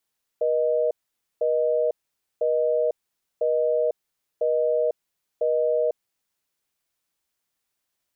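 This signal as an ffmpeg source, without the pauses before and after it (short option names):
-f lavfi -i "aevalsrc='0.0794*(sin(2*PI*480*t)+sin(2*PI*620*t))*clip(min(mod(t,1),0.5-mod(t,1))/0.005,0,1)':d=5.85:s=44100"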